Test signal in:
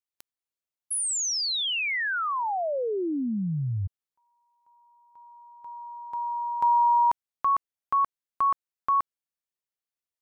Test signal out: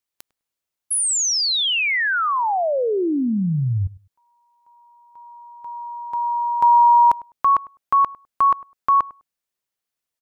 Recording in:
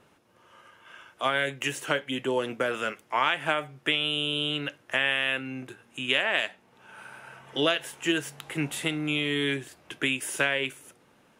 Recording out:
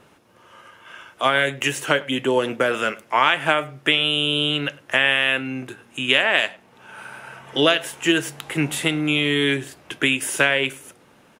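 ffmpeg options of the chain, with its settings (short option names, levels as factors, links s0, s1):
-filter_complex "[0:a]asplit=2[s0][s1];[s1]adelay=102,lowpass=f=1300:p=1,volume=0.106,asplit=2[s2][s3];[s3]adelay=102,lowpass=f=1300:p=1,volume=0.18[s4];[s0][s2][s4]amix=inputs=3:normalize=0,volume=2.37"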